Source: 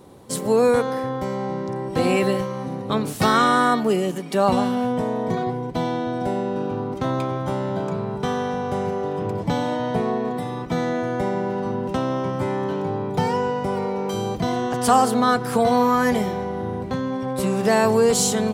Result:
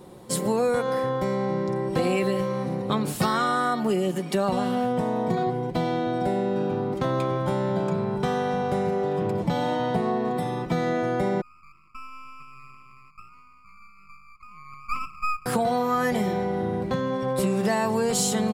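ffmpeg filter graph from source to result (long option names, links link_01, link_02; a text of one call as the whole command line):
ffmpeg -i in.wav -filter_complex "[0:a]asettb=1/sr,asplit=3[link_01][link_02][link_03];[link_01]atrim=end=11.414[link_04];[link_02]atrim=start=11.41:end=15.46,asetpts=PTS-STARTPTS,afade=type=in:duration=0.004:curve=qsin,afade=type=out:start_time=4.046:duration=0.004:curve=qsin,asuperpass=centerf=1200:order=12:qfactor=4.4,aeval=exprs='max(val(0),0)':channel_layout=same[link_05];[link_03]atrim=start=15.456[link_06];[link_04][link_05]acrossfade=duration=0.004:curve1=hsin:curve2=qsin[link_07];[link_07][link_06]acrossfade=duration=0.004:curve1=qsin:curve2=hsin,bandreject=frequency=6000:width=15,aecho=1:1:5.6:0.4,acompressor=threshold=-20dB:ratio=6" out.wav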